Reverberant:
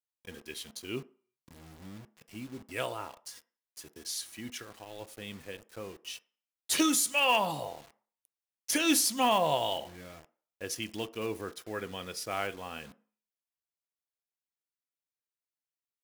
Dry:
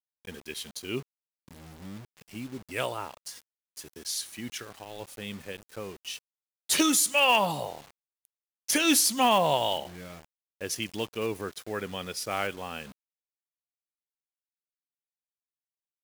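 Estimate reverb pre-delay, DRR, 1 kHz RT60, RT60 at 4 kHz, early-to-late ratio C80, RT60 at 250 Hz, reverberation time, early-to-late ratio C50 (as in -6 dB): 3 ms, 11.0 dB, 0.45 s, 0.45 s, 25.0 dB, 0.35 s, 0.45 s, 20.5 dB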